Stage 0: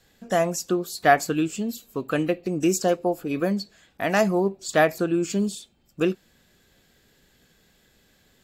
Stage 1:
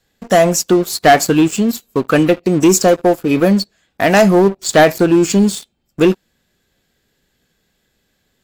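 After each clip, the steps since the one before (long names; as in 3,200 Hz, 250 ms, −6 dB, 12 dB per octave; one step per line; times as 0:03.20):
leveller curve on the samples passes 3
level +2 dB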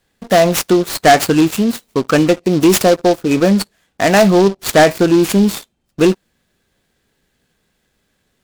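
short delay modulated by noise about 3,800 Hz, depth 0.032 ms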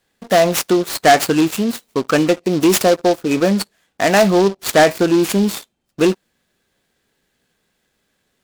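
low-shelf EQ 150 Hz −8 dB
level −1.5 dB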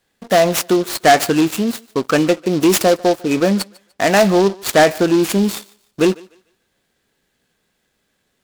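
feedback echo with a high-pass in the loop 148 ms, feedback 30%, high-pass 390 Hz, level −22.5 dB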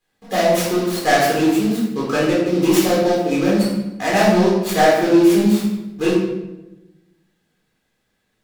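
convolution reverb RT60 1.0 s, pre-delay 9 ms, DRR −7.5 dB
level −12.5 dB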